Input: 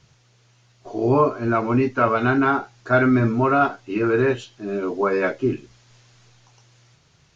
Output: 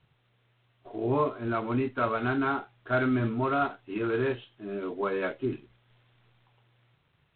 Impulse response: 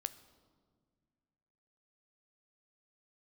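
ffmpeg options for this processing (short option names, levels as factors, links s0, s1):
-af "volume=0.355" -ar 8000 -c:a adpcm_g726 -b:a 24k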